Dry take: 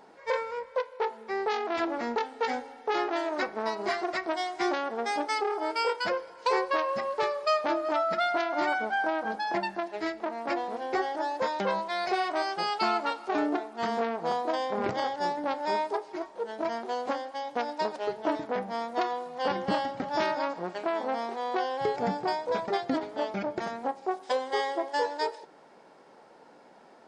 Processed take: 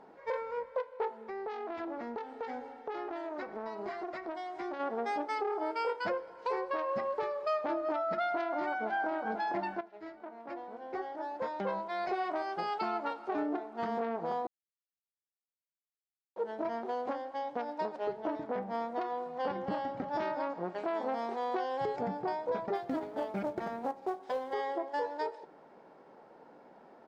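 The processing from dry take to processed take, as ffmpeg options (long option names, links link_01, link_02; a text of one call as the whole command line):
ffmpeg -i in.wav -filter_complex "[0:a]asplit=3[link_01][link_02][link_03];[link_01]afade=type=out:start_time=1.16:duration=0.02[link_04];[link_02]acompressor=threshold=-36dB:ratio=3:attack=3.2:release=140:knee=1:detection=peak,afade=type=in:start_time=1.16:duration=0.02,afade=type=out:start_time=4.79:duration=0.02[link_05];[link_03]afade=type=in:start_time=4.79:duration=0.02[link_06];[link_04][link_05][link_06]amix=inputs=3:normalize=0,asplit=2[link_07][link_08];[link_08]afade=type=in:start_time=8.35:duration=0.01,afade=type=out:start_time=8.89:duration=0.01,aecho=0:1:500|1000|1500|2000|2500|3000|3500|4000|4500|5000:0.266073|0.186251|0.130376|0.0912629|0.063884|0.0447188|0.0313032|0.0219122|0.0153386|0.010737[link_09];[link_07][link_09]amix=inputs=2:normalize=0,asettb=1/sr,asplit=3[link_10][link_11][link_12];[link_10]atrim=end=20.784[link_13];[link_11]atrim=start=20.78:end=22.01,asetpts=PTS-STARTPTS,afade=type=in:duration=0.004:curve=qsin,afade=type=out:start_time=1.226:duration=0.004:curve=qsin,highshelf=frequency=4300:gain=10[link_14];[link_12]atrim=start=22.006[link_15];[link_13][link_14]acrossfade=duration=0.004:curve1=hsin:curve2=qsin[link_16];[link_16][link_15]acrossfade=duration=0.004:curve1=qsin:curve2=hsin,asettb=1/sr,asplit=3[link_17][link_18][link_19];[link_17]atrim=end=22.754[link_20];[link_18]atrim=start=22.75:end=24.53,asetpts=PTS-STARTPTS,afade=type=in:duration=0.004:curve=qsin,afade=type=out:start_time=1.776:duration=0.004:curve=qsin,acrusher=bits=4:mode=log:mix=0:aa=0.000001[link_21];[link_19]atrim=start=24.526[link_22];[link_20][link_21]acrossfade=duration=0.004:curve1=hsin:curve2=qsin[link_23];[link_23][link_22]acrossfade=duration=0.004:curve1=qsin:curve2=hsin,asplit=4[link_24][link_25][link_26][link_27];[link_24]atrim=end=9.81,asetpts=PTS-STARTPTS,afade=type=out:start_time=9.806:duration=0.004:curve=hsin:silence=0.223872[link_28];[link_25]atrim=start=9.81:end=14.47,asetpts=PTS-STARTPTS,afade=type=in:duration=2.56:curve=qua:silence=0.223872,afade=type=out:start_time=4.656:duration=0.004:curve=hsin[link_29];[link_26]atrim=start=14.47:end=16.36,asetpts=PTS-STARTPTS,volume=0[link_30];[link_27]atrim=start=16.36,asetpts=PTS-STARTPTS,afade=type=in:duration=0.004:curve=hsin[link_31];[link_28][link_29][link_30][link_31]concat=n=4:v=0:a=1,lowpass=frequency=1200:poles=1,alimiter=level_in=0.5dB:limit=-24dB:level=0:latency=1:release=231,volume=-0.5dB" out.wav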